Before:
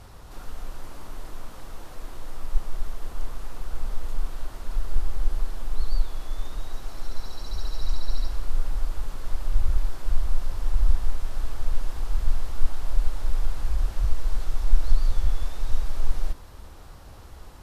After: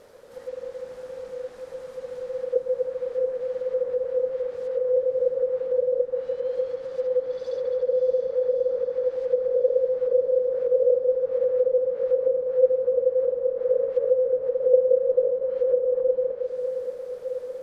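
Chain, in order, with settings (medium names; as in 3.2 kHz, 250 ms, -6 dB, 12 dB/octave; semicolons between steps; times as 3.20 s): ring modulator 510 Hz; low-pass that closes with the level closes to 670 Hz, closed at -16 dBFS; echo that smears into a reverb 645 ms, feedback 68%, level -8 dB; trim -3 dB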